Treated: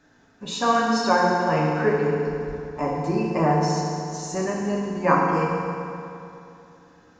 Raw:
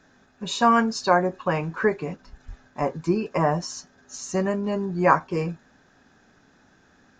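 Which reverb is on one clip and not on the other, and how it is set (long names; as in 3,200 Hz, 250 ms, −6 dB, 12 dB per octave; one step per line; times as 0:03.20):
feedback delay network reverb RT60 2.8 s, high-frequency decay 0.75×, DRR −3.5 dB
level −3.5 dB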